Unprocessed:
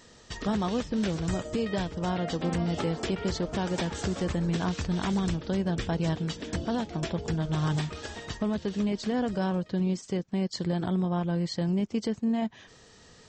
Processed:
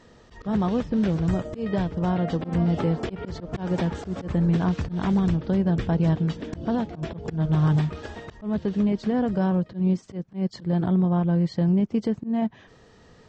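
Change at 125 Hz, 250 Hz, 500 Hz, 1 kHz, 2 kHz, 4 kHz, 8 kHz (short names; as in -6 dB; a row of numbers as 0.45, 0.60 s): +6.5 dB, +5.5 dB, +2.5 dB, +2.0 dB, -1.0 dB, -5.5 dB, n/a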